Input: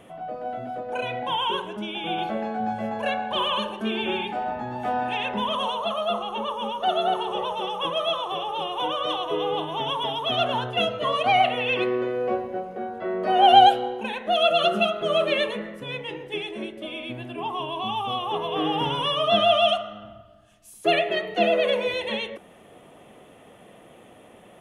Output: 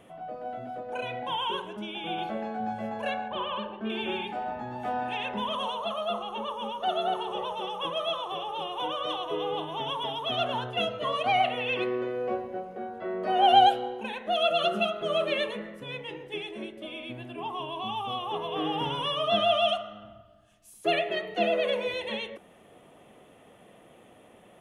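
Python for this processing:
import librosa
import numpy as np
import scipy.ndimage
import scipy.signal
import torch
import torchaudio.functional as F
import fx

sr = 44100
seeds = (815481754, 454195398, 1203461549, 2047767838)

y = fx.air_absorb(x, sr, metres=350.0, at=(3.28, 3.9))
y = F.gain(torch.from_numpy(y), -5.0).numpy()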